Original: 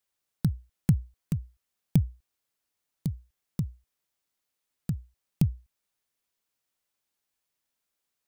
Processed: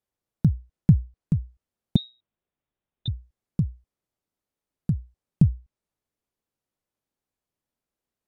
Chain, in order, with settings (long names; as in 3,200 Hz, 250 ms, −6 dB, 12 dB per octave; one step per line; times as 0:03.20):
0:01.96–0:03.08: voice inversion scrambler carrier 3,800 Hz
treble cut that deepens with the level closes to 3,000 Hz, closed at −23.5 dBFS
tilt shelving filter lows +8 dB
level −1.5 dB